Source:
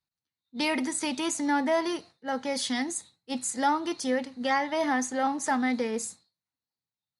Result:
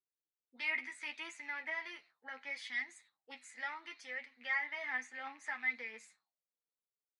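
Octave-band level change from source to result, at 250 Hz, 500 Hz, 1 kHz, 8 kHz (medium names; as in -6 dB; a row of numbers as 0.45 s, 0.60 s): -31.0 dB, -24.0 dB, -19.5 dB, -24.5 dB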